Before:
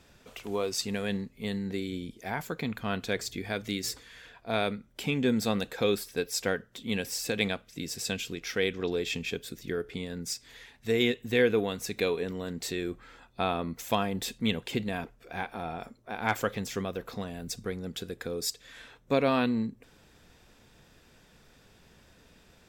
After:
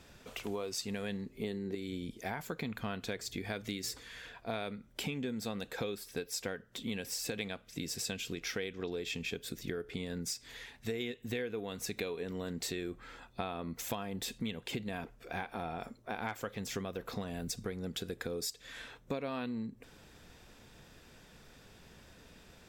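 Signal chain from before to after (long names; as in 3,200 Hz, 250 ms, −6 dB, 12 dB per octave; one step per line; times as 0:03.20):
0:01.26–0:01.75: parametric band 360 Hz +13.5 dB 0.51 octaves
downward compressor 10 to 1, threshold −36 dBFS, peak gain reduction 17 dB
level +1.5 dB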